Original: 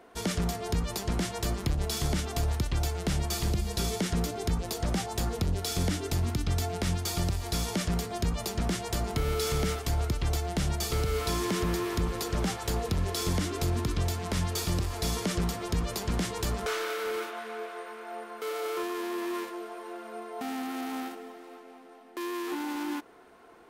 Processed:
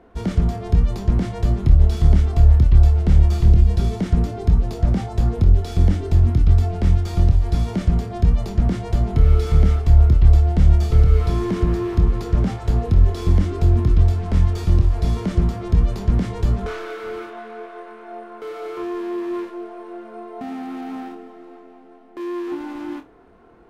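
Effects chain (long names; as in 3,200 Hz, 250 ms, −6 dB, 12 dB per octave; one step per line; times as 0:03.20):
RIAA equalisation playback
flutter between parallel walls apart 4.4 metres, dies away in 0.2 s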